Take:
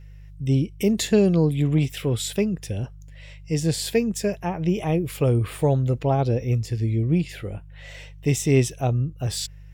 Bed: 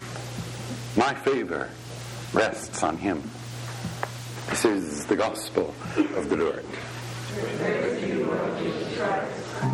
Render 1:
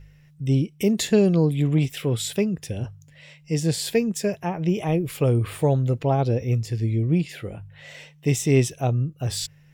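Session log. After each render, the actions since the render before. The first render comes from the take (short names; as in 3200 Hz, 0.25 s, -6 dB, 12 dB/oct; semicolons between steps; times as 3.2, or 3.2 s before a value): de-hum 50 Hz, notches 2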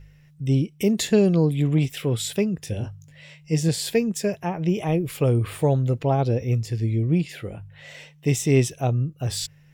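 2.65–3.69 doubler 19 ms -6.5 dB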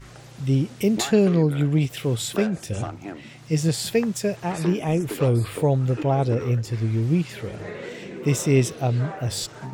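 add bed -9.5 dB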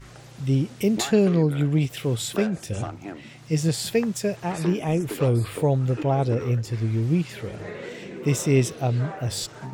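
gain -1 dB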